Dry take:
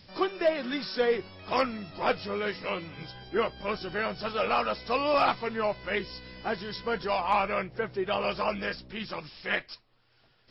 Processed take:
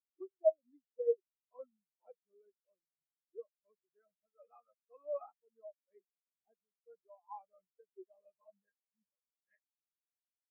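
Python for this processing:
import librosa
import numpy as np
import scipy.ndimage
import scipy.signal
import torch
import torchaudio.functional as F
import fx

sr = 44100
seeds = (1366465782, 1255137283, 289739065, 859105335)

y = fx.spectral_expand(x, sr, expansion=4.0)
y = y * librosa.db_to_amplitude(-3.5)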